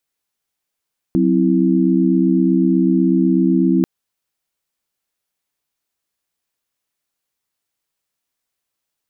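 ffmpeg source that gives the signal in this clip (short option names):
-f lavfi -i "aevalsrc='0.158*(sin(2*PI*185*t)+sin(2*PI*261.63*t)+sin(2*PI*329.63*t))':d=2.69:s=44100"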